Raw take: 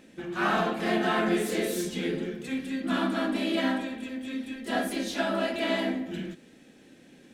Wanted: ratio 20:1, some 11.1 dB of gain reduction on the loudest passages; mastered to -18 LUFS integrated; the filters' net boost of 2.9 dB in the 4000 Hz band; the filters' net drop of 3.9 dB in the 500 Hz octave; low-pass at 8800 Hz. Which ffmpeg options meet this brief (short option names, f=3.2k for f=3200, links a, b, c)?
-af "lowpass=8.8k,equalizer=f=500:t=o:g=-6,equalizer=f=4k:t=o:g=4,acompressor=threshold=-34dB:ratio=20,volume=20dB"